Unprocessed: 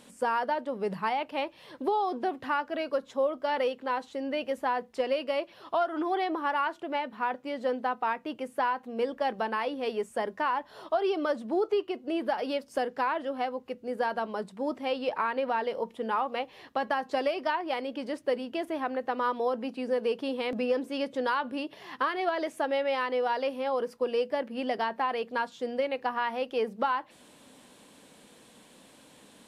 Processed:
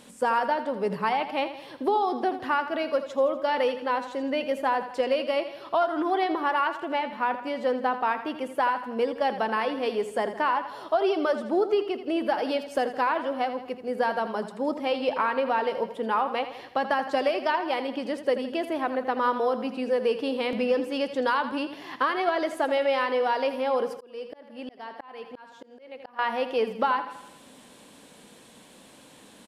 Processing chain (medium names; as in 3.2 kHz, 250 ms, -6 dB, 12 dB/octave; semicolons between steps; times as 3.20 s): feedback delay 82 ms, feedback 53%, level -11.5 dB; 23.89–26.19 s: slow attack 760 ms; trim +3.5 dB